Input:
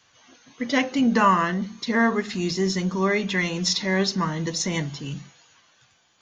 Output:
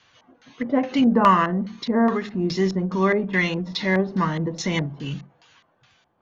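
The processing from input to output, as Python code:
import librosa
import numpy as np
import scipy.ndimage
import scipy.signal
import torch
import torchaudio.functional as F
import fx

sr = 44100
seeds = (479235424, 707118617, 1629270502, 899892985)

y = fx.filter_lfo_lowpass(x, sr, shape='square', hz=2.4, low_hz=780.0, high_hz=3900.0, q=0.93)
y = fx.end_taper(y, sr, db_per_s=180.0)
y = F.gain(torch.from_numpy(y), 2.5).numpy()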